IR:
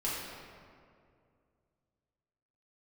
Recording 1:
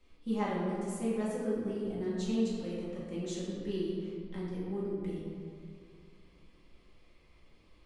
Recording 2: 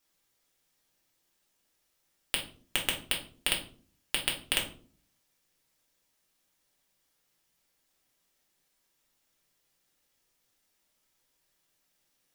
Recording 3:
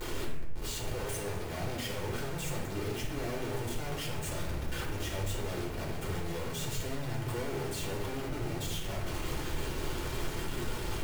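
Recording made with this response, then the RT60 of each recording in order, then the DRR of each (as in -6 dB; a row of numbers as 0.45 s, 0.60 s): 1; 2.3 s, 0.45 s, 0.95 s; -8.0 dB, -1.0 dB, -4.5 dB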